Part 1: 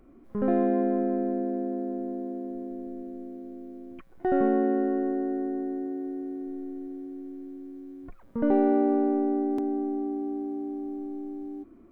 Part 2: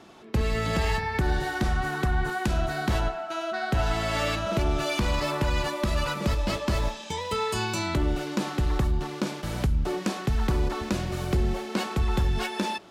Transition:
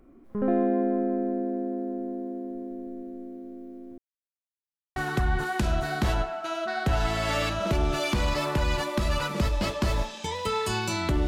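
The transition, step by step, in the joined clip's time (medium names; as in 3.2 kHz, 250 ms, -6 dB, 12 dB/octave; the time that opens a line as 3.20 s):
part 1
3.98–4.96 s: mute
4.96 s: go over to part 2 from 1.82 s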